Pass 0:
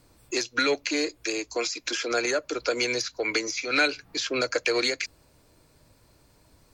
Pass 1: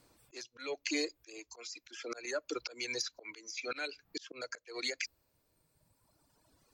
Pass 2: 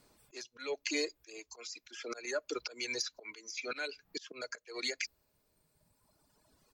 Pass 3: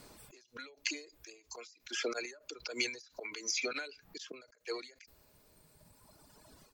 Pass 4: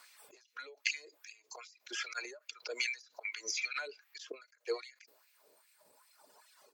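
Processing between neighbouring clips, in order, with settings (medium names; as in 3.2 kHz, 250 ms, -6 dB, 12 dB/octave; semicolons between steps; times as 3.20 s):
reverb removal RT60 2 s; slow attack 356 ms; bass shelf 120 Hz -10.5 dB; trim -4.5 dB
comb 4.8 ms, depth 30%
endings held to a fixed fall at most 120 dB/s; trim +10.5 dB
LFO high-pass sine 2.5 Hz 410–2300 Hz; trim -2.5 dB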